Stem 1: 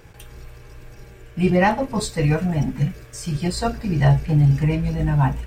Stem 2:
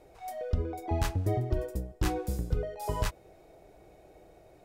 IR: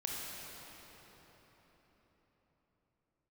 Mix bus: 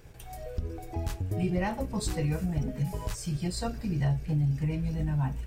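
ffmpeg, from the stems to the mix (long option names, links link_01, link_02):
-filter_complex "[0:a]volume=-4dB[link_01];[1:a]adelay=50,volume=0dB[link_02];[link_01][link_02]amix=inputs=2:normalize=0,equalizer=frequency=1100:width=0.31:gain=-6,acompressor=threshold=-29dB:ratio=2"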